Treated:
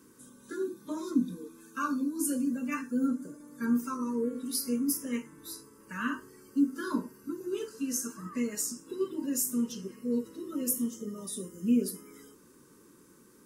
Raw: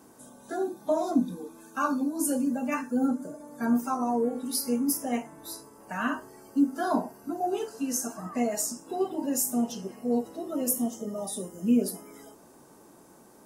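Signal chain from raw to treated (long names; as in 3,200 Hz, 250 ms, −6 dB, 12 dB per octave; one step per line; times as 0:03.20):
Butterworth band-reject 720 Hz, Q 1.2
level −2.5 dB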